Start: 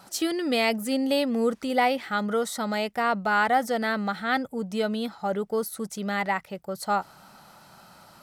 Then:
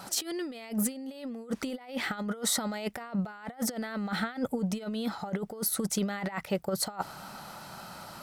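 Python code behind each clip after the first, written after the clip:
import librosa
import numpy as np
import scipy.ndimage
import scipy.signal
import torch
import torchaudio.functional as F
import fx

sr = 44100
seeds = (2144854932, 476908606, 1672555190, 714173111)

y = fx.over_compress(x, sr, threshold_db=-32.0, ratio=-0.5)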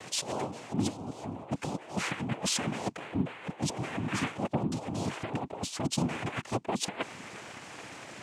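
y = fx.noise_vocoder(x, sr, seeds[0], bands=4)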